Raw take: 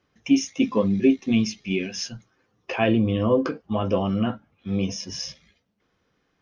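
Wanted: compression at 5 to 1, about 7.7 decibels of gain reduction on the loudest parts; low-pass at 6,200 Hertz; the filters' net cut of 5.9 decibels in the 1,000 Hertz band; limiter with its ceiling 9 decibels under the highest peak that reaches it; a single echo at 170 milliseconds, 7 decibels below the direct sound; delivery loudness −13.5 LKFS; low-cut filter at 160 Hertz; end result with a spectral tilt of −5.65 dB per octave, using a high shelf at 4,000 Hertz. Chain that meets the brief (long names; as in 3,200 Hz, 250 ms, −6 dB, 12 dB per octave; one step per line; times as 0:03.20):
high-pass filter 160 Hz
low-pass filter 6,200 Hz
parametric band 1,000 Hz −8 dB
high-shelf EQ 4,000 Hz −7.5 dB
downward compressor 5 to 1, threshold −22 dBFS
brickwall limiter −22.5 dBFS
single-tap delay 170 ms −7 dB
level +19 dB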